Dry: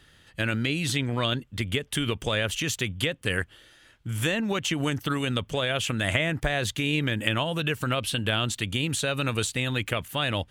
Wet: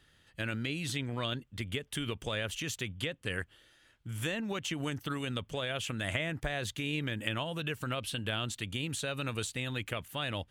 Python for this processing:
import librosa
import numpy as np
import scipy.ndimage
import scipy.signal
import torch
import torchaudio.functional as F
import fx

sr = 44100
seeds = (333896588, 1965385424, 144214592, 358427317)

y = fx.high_shelf(x, sr, hz=12000.0, db=-8.5, at=(2.83, 3.39))
y = y * 10.0 ** (-8.5 / 20.0)